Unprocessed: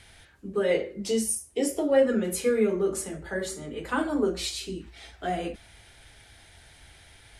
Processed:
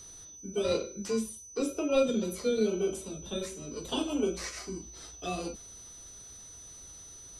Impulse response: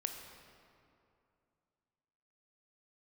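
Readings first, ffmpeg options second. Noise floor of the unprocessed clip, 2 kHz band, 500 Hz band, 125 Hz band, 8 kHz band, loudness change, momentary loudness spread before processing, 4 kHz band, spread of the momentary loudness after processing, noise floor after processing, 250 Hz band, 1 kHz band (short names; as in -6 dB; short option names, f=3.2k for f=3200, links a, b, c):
-54 dBFS, -8.5 dB, -5.0 dB, -3.5 dB, -4.0 dB, -5.0 dB, 14 LU, -2.5 dB, 17 LU, -49 dBFS, -4.0 dB, -7.0 dB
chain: -filter_complex "[0:a]tiltshelf=f=1.4k:g=-3,acrossover=split=740|4100[a][b][c];[b]aeval=exprs='val(0)*sin(2*PI*1900*n/s)':c=same[d];[c]acompressor=threshold=-45dB:ratio=6[e];[a][d][e]amix=inputs=3:normalize=0,aeval=exprs='val(0)+0.00501*sin(2*PI*6000*n/s)':c=same,volume=-1dB"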